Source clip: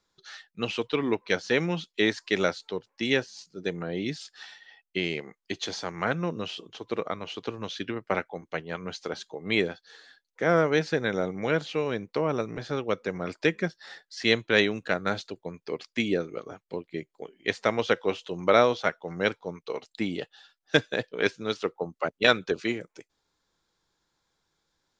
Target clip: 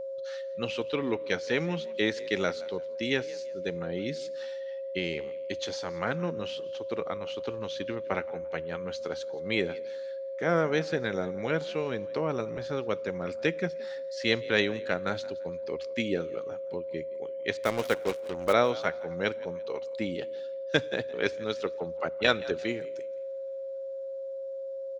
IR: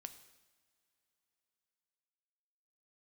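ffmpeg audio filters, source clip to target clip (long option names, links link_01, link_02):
-filter_complex "[0:a]equalizer=frequency=74:width=5:gain=14,asettb=1/sr,asplit=3[link_01][link_02][link_03];[link_01]atrim=end=17.574[link_04];[link_02]atrim=start=17.57:end=18.53,asetpts=PTS-STARTPTS,afade=type=in:duration=0.004:curve=qsin,afade=type=out:start_time=0.956:duration=0.004:curve=qsin,acrusher=bits=4:mix=0:aa=0.5[link_05];[link_03]atrim=start=18.526[link_06];[link_04][link_05]acrossfade=duration=0.004:curve1=hsin:curve2=qsin[link_07];[link_07][link_06]acrossfade=duration=0.004:curve1=qsin:curve2=hsin,asplit=4[link_08][link_09][link_10][link_11];[link_09]adelay=171,afreqshift=49,volume=-20.5dB[link_12];[link_10]adelay=342,afreqshift=98,volume=-30.1dB[link_13];[link_11]adelay=513,afreqshift=147,volume=-39.8dB[link_14];[link_08][link_12][link_13][link_14]amix=inputs=4:normalize=0,asplit=2[link_15][link_16];[1:a]atrim=start_sample=2205[link_17];[link_16][link_17]afir=irnorm=-1:irlink=0,volume=-4.5dB[link_18];[link_15][link_18]amix=inputs=2:normalize=0,aeval=exprs='val(0)+0.0398*sin(2*PI*540*n/s)':channel_layout=same,volume=-6dB"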